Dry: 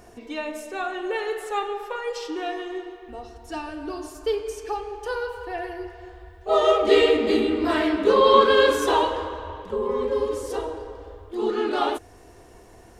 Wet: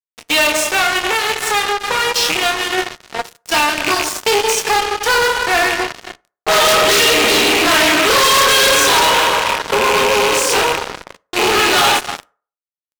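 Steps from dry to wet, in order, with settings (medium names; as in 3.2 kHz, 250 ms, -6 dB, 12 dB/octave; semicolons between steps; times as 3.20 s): rattle on loud lows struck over -37 dBFS, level -26 dBFS; doubling 27 ms -6 dB; speakerphone echo 270 ms, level -18 dB; one-sided clip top -18 dBFS; treble shelf 4.7 kHz -9 dB; Chebyshev shaper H 6 -13 dB, 8 -12 dB, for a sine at -6.5 dBFS; 0.62–2.78 s: compression 12:1, threshold -29 dBFS, peak gain reduction 10.5 dB; frequency weighting ITU-R 468; fuzz box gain 34 dB, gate -39 dBFS; reverberation RT60 0.40 s, pre-delay 3 ms, DRR 17.5 dB; trim +4 dB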